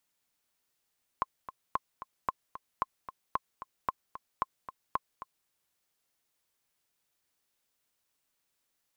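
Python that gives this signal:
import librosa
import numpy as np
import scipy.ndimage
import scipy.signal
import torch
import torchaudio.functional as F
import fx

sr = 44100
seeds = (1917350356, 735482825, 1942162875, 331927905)

y = fx.click_track(sr, bpm=225, beats=2, bars=8, hz=1060.0, accent_db=13.0, level_db=-15.0)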